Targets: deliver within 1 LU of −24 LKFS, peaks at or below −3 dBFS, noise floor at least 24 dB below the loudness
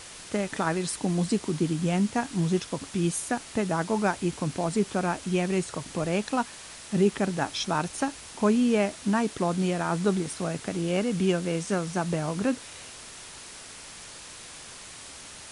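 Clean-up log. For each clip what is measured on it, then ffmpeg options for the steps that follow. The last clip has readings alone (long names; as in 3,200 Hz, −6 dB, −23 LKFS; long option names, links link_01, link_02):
background noise floor −44 dBFS; target noise floor −52 dBFS; integrated loudness −27.5 LKFS; sample peak −12.5 dBFS; target loudness −24.0 LKFS
→ -af "afftdn=noise_reduction=8:noise_floor=-44"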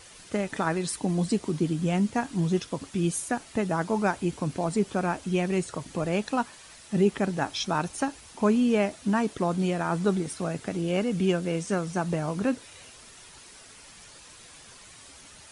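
background noise floor −50 dBFS; target noise floor −52 dBFS
→ -af "afftdn=noise_reduction=6:noise_floor=-50"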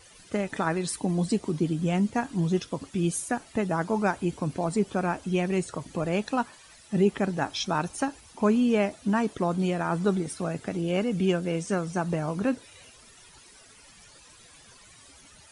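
background noise floor −53 dBFS; integrated loudness −28.0 LKFS; sample peak −12.5 dBFS; target loudness −24.0 LKFS
→ -af "volume=4dB"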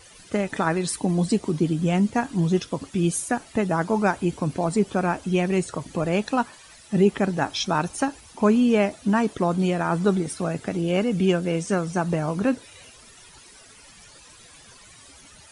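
integrated loudness −24.0 LKFS; sample peak −8.5 dBFS; background noise floor −49 dBFS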